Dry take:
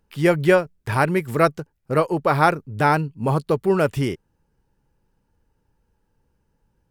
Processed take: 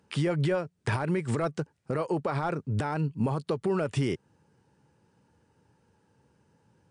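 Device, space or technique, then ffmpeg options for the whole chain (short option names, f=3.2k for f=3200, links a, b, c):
podcast mastering chain: -af "highpass=f=93:w=0.5412,highpass=f=93:w=1.3066,deesser=0.65,acompressor=threshold=-28dB:ratio=2.5,alimiter=level_in=1dB:limit=-24dB:level=0:latency=1:release=88,volume=-1dB,volume=6.5dB" -ar 22050 -c:a libmp3lame -b:a 96k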